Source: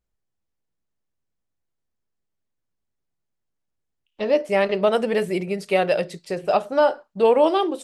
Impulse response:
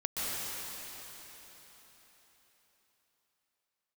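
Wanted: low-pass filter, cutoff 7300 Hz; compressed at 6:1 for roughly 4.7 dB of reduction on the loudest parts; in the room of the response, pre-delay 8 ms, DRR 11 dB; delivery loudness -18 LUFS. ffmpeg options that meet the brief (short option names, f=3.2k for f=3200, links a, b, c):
-filter_complex "[0:a]lowpass=7.3k,acompressor=threshold=-17dB:ratio=6,asplit=2[a][b];[1:a]atrim=start_sample=2205,adelay=8[c];[b][c]afir=irnorm=-1:irlink=0,volume=-18.5dB[d];[a][d]amix=inputs=2:normalize=0,volume=6dB"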